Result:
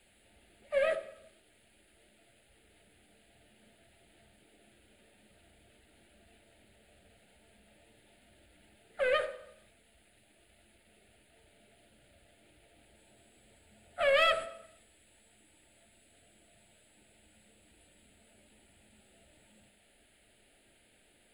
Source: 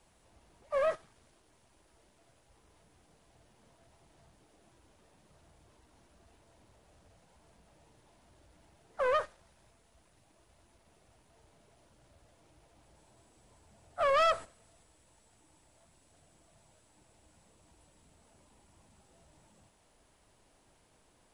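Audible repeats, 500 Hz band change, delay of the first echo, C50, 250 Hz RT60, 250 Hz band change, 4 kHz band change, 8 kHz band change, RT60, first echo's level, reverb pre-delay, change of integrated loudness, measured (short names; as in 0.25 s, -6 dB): none, +1.0 dB, none, 11.5 dB, 0.55 s, +1.5 dB, +6.5 dB, +0.5 dB, 0.75 s, none, 3 ms, +1.0 dB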